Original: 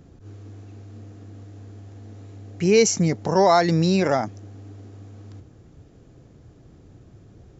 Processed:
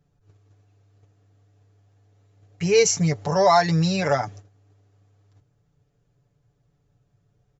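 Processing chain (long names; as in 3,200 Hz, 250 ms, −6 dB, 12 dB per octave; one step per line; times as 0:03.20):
parametric band 290 Hz −12 dB 0.8 octaves
comb filter 6.9 ms, depth 77%
noise gate −39 dBFS, range −16 dB
level −1 dB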